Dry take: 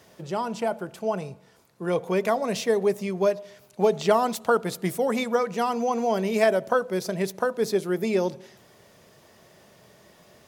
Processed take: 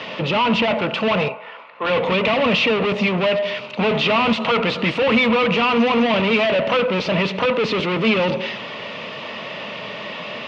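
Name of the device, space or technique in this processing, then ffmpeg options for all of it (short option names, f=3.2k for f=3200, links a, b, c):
overdrive pedal into a guitar cabinet: -filter_complex "[0:a]asettb=1/sr,asplit=3[a][b][c];[a]atrim=end=1.284[d];[b]atrim=start=1.28:end=1.98,asetpts=PTS-STARTPTS,afade=t=in:d=0.004:c=qsin,afade=t=out:st=0.696:d=0.004:c=qsin,acrossover=split=490 2600:gain=0.1 1 0.0891[e][f][g];[e][f][g]amix=inputs=3:normalize=0[h];[c]atrim=start=1.976[i];[d][h]acrossfade=d=0.004:c1=hsin:c2=qsin[j];[j][i]acrossfade=d=0.004:c1=qsin:c2=hsin,asplit=2[k][l];[l]highpass=f=720:p=1,volume=37dB,asoftclip=type=tanh:threshold=-8.5dB[m];[k][m]amix=inputs=2:normalize=0,lowpass=f=4.3k:p=1,volume=-6dB,highpass=97,equalizer=f=230:t=q:w=4:g=4,equalizer=f=370:t=q:w=4:g=-10,equalizer=f=740:t=q:w=4:g=-8,equalizer=f=1.6k:t=q:w=4:g=-9,equalizer=f=2.7k:t=q:w=4:g=7,lowpass=f=3.6k:w=0.5412,lowpass=f=3.6k:w=1.3066"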